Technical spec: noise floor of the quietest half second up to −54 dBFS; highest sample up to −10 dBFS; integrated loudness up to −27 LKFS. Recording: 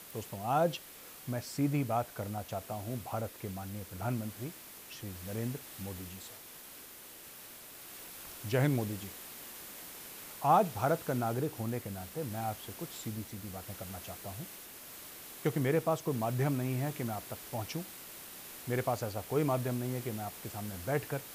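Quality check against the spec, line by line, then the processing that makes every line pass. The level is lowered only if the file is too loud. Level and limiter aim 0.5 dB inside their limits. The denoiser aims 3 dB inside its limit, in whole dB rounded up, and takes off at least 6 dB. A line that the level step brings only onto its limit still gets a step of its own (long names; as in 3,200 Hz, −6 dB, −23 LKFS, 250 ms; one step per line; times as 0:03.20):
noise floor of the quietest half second −51 dBFS: out of spec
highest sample −15.0 dBFS: in spec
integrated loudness −36.0 LKFS: in spec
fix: broadband denoise 6 dB, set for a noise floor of −51 dBFS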